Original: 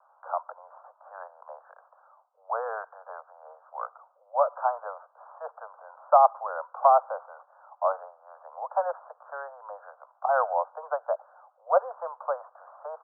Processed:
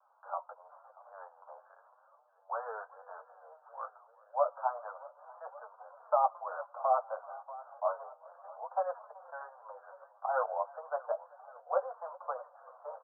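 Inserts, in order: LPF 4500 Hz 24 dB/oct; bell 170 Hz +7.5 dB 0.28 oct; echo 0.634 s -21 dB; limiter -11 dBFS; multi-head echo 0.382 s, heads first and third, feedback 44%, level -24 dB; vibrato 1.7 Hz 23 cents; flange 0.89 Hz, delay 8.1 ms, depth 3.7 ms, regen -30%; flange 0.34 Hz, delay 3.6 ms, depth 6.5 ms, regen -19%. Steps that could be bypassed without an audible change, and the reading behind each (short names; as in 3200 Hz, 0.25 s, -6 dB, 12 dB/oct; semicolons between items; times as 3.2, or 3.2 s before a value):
LPF 4500 Hz: input band ends at 1600 Hz; bell 170 Hz: input band starts at 430 Hz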